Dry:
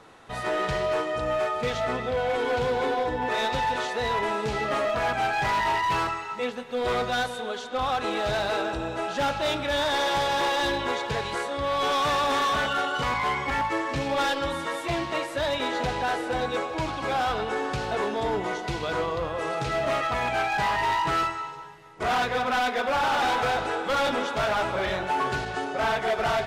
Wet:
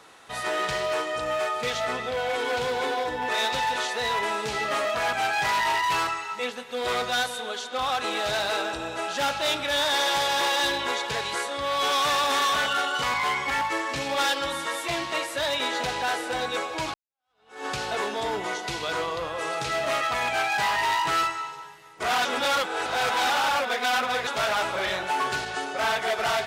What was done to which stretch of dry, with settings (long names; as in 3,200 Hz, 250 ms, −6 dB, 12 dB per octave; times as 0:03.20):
0:16.94–0:17.66: fade in exponential
0:22.25–0:24.27: reverse
whole clip: spectral tilt +2.5 dB per octave